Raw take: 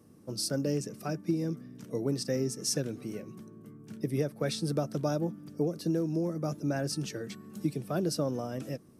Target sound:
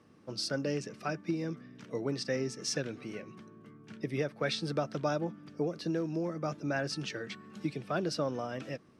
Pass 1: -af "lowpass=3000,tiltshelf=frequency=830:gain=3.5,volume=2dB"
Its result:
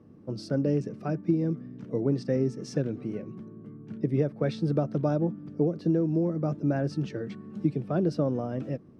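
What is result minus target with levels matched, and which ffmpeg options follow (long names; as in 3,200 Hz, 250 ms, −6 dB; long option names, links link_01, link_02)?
1,000 Hz band −6.5 dB
-af "lowpass=3000,tiltshelf=frequency=830:gain=-7.5,volume=2dB"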